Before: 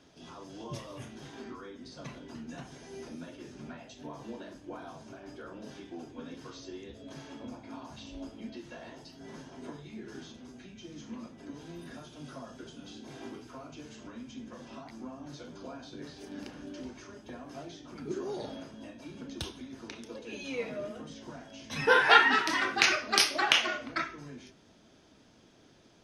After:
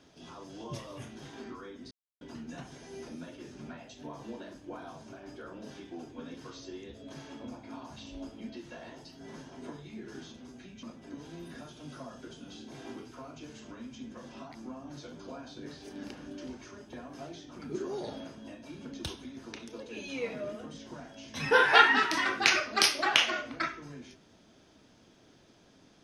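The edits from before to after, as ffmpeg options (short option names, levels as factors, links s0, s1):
-filter_complex "[0:a]asplit=4[s0][s1][s2][s3];[s0]atrim=end=1.91,asetpts=PTS-STARTPTS,afade=t=out:st=1.906:d=0.004:c=hsin[s4];[s1]atrim=start=1.91:end=2.21,asetpts=PTS-STARTPTS,volume=0[s5];[s2]atrim=start=2.21:end=10.832,asetpts=PTS-STARTPTS,afade=t=in:d=0.004:c=hsin[s6];[s3]atrim=start=11.188[s7];[s4][s5][s6]concat=n=3:v=0:a=1[s8];[s8][s7]acrossfade=d=0.004:c1=hsin:c2=hsin"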